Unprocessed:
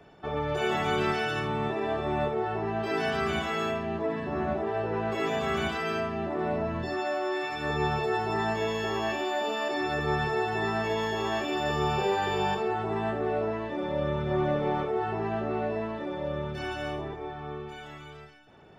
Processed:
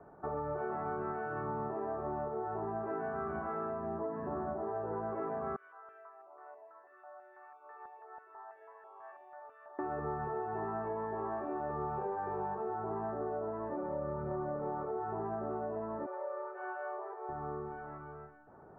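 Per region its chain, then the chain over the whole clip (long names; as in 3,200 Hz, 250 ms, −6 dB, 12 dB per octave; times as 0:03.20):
0:05.56–0:09.79: high-pass filter 450 Hz 24 dB per octave + first difference + notch on a step sequencer 6.1 Hz 810–5,100 Hz
0:16.06–0:17.29: linear-phase brick-wall high-pass 350 Hz + low-shelf EQ 500 Hz −10.5 dB
whole clip: Butterworth low-pass 1,400 Hz 36 dB per octave; low-shelf EQ 370 Hz −6.5 dB; downward compressor, threshold −36 dBFS; level +1.5 dB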